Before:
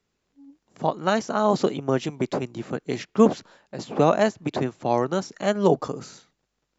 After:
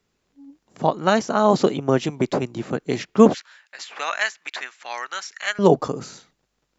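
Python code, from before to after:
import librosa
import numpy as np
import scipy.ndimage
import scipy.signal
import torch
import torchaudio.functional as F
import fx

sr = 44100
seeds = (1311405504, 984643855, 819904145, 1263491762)

y = fx.highpass_res(x, sr, hz=1800.0, q=1.9, at=(3.34, 5.59))
y = y * 10.0 ** (4.0 / 20.0)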